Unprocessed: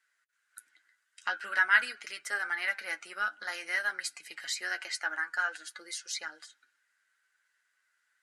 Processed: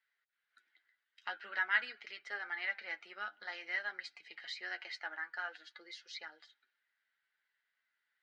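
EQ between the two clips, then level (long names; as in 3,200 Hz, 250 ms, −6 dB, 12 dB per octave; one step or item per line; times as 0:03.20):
loudspeaker in its box 210–3,900 Hz, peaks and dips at 290 Hz −7 dB, 560 Hz −4 dB, 1,100 Hz −6 dB, 1,500 Hz −8 dB, 2,600 Hz −4 dB
−3.0 dB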